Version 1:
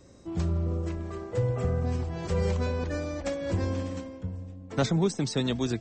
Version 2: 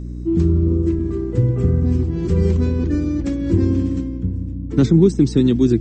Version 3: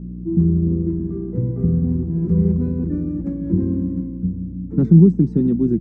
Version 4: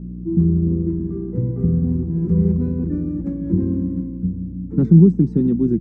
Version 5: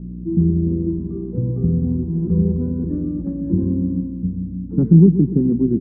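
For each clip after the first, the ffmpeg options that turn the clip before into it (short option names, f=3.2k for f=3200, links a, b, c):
-af "lowshelf=f=460:t=q:w=3:g=10.5,aeval=exprs='val(0)+0.0447*(sin(2*PI*60*n/s)+sin(2*PI*2*60*n/s)/2+sin(2*PI*3*60*n/s)/3+sin(2*PI*4*60*n/s)/4+sin(2*PI*5*60*n/s)/5)':c=same"
-af "firequalizer=gain_entry='entry(120,0);entry(170,14);entry(270,3);entry(3300,-23)':delay=0.05:min_phase=1,volume=-7dB"
-af "bandreject=f=640:w=12"
-af "lowpass=1k,aecho=1:1:129|258|387|516:0.224|0.0918|0.0376|0.0154"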